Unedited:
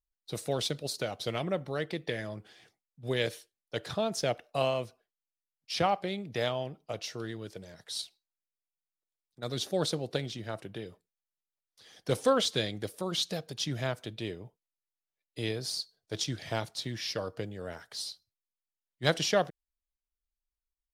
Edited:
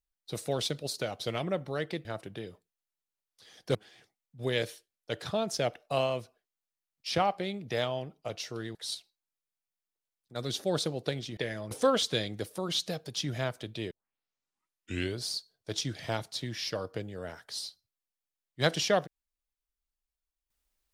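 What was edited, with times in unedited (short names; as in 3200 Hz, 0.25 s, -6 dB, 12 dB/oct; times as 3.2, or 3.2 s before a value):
2.05–2.39 swap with 10.44–12.14
7.39–7.82 cut
14.34 tape start 1.35 s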